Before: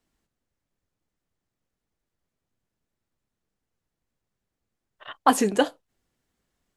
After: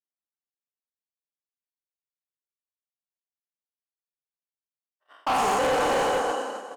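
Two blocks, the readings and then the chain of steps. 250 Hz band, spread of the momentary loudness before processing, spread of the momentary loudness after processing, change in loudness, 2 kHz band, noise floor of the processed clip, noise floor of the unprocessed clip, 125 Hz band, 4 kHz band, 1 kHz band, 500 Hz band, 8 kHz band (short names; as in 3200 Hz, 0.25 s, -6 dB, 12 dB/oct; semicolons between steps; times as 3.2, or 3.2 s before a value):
-7.0 dB, 5 LU, 8 LU, -1.0 dB, +3.5 dB, under -85 dBFS, -85 dBFS, n/a, +2.0 dB, +2.5 dB, +3.0 dB, -1.5 dB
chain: spectral trails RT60 2.47 s; in parallel at -10 dB: sample-and-hold 13×; on the sum: bell 3400 Hz -4.5 dB 1.8 oct; Schroeder reverb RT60 1.3 s, combs from 27 ms, DRR 14.5 dB; limiter -11.5 dBFS, peak gain reduction 11 dB; BPF 440–7700 Hz; doubler 29 ms -13.5 dB; on a send: diffused feedback echo 0.477 s, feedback 48%, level -8.5 dB; on the sum: expander -23 dBFS; hard clip -22.5 dBFS, distortion -9 dB; gain +2 dB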